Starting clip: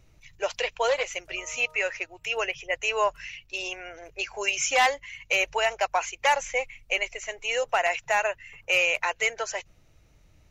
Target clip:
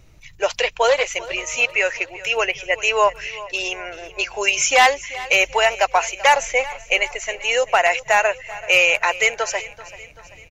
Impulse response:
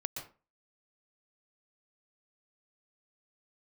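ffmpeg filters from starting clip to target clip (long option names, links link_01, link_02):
-af "aecho=1:1:386|772|1158|1544:0.126|0.0655|0.034|0.0177,volume=8dB"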